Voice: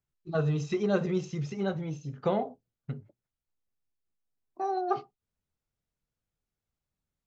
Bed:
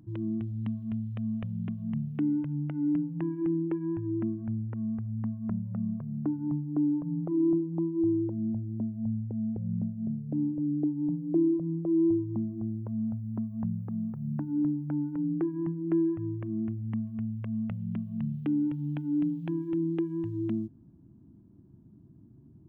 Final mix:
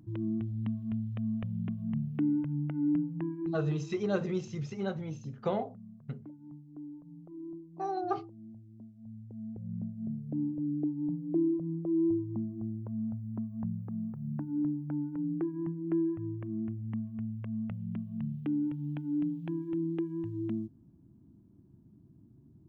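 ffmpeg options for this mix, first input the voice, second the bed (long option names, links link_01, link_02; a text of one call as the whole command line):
ffmpeg -i stem1.wav -i stem2.wav -filter_complex "[0:a]adelay=3200,volume=-3.5dB[link_01];[1:a]volume=13.5dB,afade=type=out:start_time=2.99:duration=0.91:silence=0.141254,afade=type=in:start_time=9.03:duration=1.15:silence=0.188365[link_02];[link_01][link_02]amix=inputs=2:normalize=0" out.wav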